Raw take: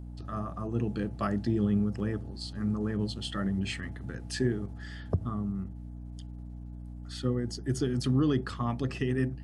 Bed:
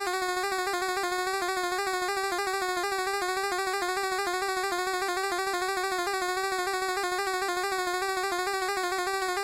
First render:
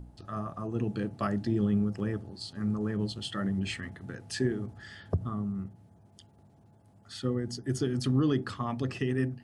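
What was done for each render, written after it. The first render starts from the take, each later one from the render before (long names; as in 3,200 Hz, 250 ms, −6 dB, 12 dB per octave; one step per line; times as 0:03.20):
hum removal 60 Hz, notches 5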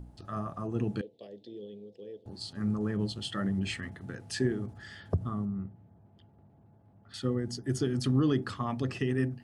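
0:01.01–0:02.26: pair of resonant band-passes 1,300 Hz, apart 2.9 octaves
0:05.45–0:07.14: high-frequency loss of the air 430 metres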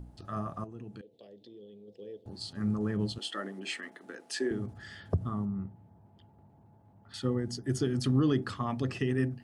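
0:00.64–0:01.88: downward compressor 2 to 1, threshold −52 dBFS
0:03.18–0:04.51: high-pass filter 290 Hz 24 dB per octave
0:05.33–0:07.43: parametric band 910 Hz +9 dB 0.22 octaves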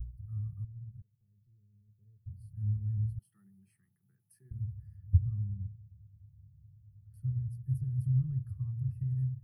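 inverse Chebyshev band-stop filter 250–7,600 Hz, stop band 40 dB
low-shelf EQ 140 Hz +9.5 dB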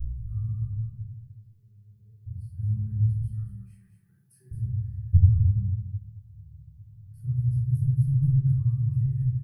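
single-tap delay 218 ms −8 dB
rectangular room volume 920 cubic metres, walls furnished, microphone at 4.8 metres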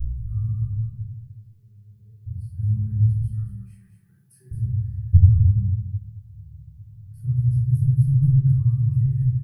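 level +5 dB
brickwall limiter −3 dBFS, peak gain reduction 1 dB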